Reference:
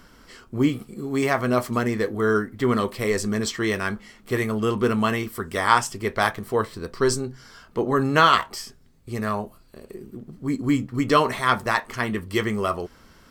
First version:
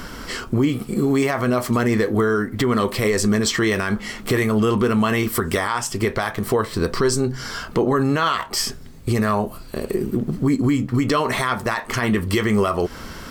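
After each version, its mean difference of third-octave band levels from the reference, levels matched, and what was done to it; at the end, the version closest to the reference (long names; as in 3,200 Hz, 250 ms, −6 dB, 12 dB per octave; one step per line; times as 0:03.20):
5.5 dB: downward compressor 4 to 1, threshold −32 dBFS, peak gain reduction 18 dB
boost into a limiter +26 dB
level −9 dB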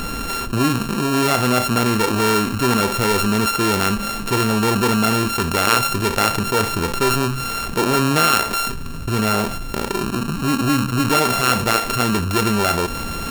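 12.0 dB: samples sorted by size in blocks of 32 samples
envelope flattener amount 70%
level −1 dB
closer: first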